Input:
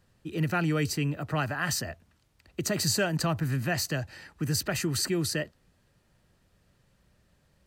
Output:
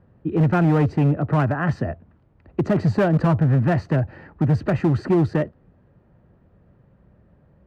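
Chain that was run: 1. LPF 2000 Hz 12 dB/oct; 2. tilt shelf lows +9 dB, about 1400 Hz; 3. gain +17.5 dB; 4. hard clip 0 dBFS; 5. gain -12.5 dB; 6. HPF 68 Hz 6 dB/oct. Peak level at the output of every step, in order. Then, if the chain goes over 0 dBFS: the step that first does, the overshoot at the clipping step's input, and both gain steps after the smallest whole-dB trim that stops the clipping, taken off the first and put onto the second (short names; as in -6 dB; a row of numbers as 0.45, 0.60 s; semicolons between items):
-16.0, -10.0, +7.5, 0.0, -12.5, -9.5 dBFS; step 3, 7.5 dB; step 3 +9.5 dB, step 5 -4.5 dB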